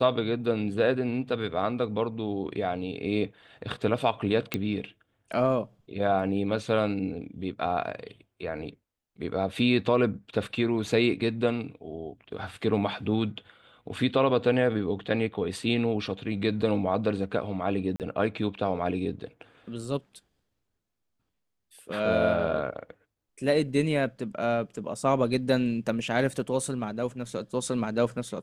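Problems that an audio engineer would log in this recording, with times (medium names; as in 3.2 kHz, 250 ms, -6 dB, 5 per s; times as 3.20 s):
4.54 s: pop -12 dBFS
17.96–18.00 s: dropout 38 ms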